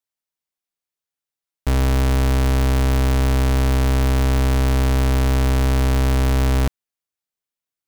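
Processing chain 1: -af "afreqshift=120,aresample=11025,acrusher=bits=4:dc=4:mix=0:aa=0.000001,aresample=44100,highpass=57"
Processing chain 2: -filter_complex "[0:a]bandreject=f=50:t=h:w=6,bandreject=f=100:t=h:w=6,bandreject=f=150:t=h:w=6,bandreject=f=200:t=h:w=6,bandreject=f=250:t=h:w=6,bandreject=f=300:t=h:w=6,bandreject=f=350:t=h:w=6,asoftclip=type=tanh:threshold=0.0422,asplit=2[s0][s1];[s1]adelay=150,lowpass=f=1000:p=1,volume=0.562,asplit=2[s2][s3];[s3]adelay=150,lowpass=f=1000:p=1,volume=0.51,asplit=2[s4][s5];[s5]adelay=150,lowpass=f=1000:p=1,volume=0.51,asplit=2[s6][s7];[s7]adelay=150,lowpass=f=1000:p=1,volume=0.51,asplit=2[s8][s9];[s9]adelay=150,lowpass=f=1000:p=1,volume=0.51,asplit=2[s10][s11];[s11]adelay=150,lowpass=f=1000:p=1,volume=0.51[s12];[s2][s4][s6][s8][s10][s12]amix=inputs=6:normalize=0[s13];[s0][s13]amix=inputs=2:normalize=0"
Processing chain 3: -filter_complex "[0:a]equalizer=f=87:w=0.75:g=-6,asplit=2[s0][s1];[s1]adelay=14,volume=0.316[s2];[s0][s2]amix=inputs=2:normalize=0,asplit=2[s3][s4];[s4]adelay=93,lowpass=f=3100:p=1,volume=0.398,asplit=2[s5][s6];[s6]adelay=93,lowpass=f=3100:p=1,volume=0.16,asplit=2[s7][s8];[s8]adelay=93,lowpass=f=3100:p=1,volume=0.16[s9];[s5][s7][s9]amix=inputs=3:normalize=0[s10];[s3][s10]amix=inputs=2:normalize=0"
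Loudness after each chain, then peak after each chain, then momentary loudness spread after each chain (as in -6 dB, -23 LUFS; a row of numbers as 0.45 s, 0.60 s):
-16.5 LUFS, -29.0 LUFS, -20.0 LUFS; -7.5 dBFS, -21.0 dBFS, -11.5 dBFS; 1 LU, 5 LU, 2 LU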